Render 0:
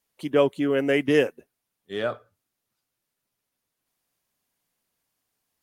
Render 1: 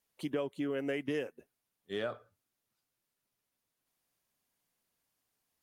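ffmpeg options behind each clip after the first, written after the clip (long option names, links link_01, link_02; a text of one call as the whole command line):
ffmpeg -i in.wav -af "acompressor=threshold=-28dB:ratio=6,volume=-4dB" out.wav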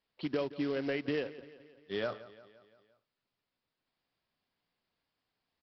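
ffmpeg -i in.wav -af "aresample=11025,acrusher=bits=4:mode=log:mix=0:aa=0.000001,aresample=44100,aecho=1:1:173|346|519|692|865:0.141|0.0805|0.0459|0.0262|0.0149,volume=1dB" out.wav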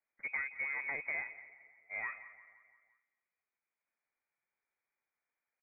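ffmpeg -i in.wav -filter_complex "[0:a]asplit=2[link_01][link_02];[link_02]adelay=218,lowpass=frequency=1800:poles=1,volume=-17dB,asplit=2[link_03][link_04];[link_04]adelay=218,lowpass=frequency=1800:poles=1,volume=0.36,asplit=2[link_05][link_06];[link_06]adelay=218,lowpass=frequency=1800:poles=1,volume=0.36[link_07];[link_01][link_03][link_05][link_07]amix=inputs=4:normalize=0,aeval=exprs='0.106*(cos(1*acos(clip(val(0)/0.106,-1,1)))-cos(1*PI/2))+0.015*(cos(3*acos(clip(val(0)/0.106,-1,1)))-cos(3*PI/2))+0.00299*(cos(5*acos(clip(val(0)/0.106,-1,1)))-cos(5*PI/2))+0.00473*(cos(6*acos(clip(val(0)/0.106,-1,1)))-cos(6*PI/2))':channel_layout=same,lowpass=frequency=2100:width_type=q:width=0.5098,lowpass=frequency=2100:width_type=q:width=0.6013,lowpass=frequency=2100:width_type=q:width=0.9,lowpass=frequency=2100:width_type=q:width=2.563,afreqshift=-2500,volume=-2.5dB" out.wav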